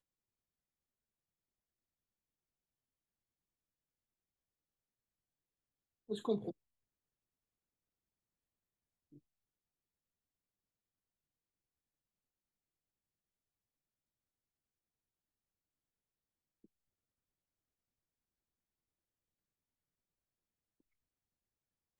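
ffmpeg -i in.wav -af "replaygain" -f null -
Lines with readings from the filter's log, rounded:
track_gain = +64.0 dB
track_peak = 0.053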